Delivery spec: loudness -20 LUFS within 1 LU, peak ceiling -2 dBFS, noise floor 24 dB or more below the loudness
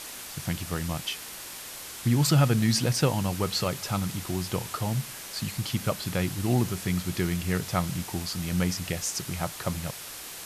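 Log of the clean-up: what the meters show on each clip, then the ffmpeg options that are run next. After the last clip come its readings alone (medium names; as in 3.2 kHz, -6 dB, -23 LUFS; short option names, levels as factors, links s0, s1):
noise floor -41 dBFS; noise floor target -53 dBFS; loudness -28.5 LUFS; peak level -11.0 dBFS; loudness target -20.0 LUFS
-> -af "afftdn=nr=12:nf=-41"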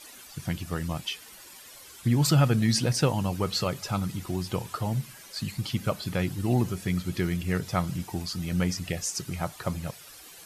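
noise floor -48 dBFS; noise floor target -53 dBFS
-> -af "afftdn=nr=6:nf=-48"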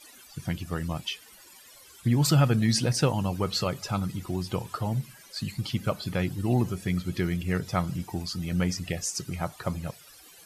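noise floor -52 dBFS; noise floor target -53 dBFS
-> -af "afftdn=nr=6:nf=-52"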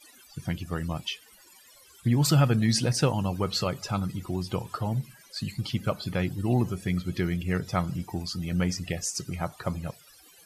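noise floor -55 dBFS; loudness -28.5 LUFS; peak level -11.5 dBFS; loudness target -20.0 LUFS
-> -af "volume=2.66"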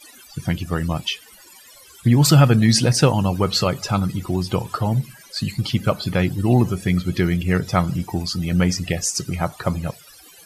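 loudness -20.0 LUFS; peak level -3.0 dBFS; noise floor -47 dBFS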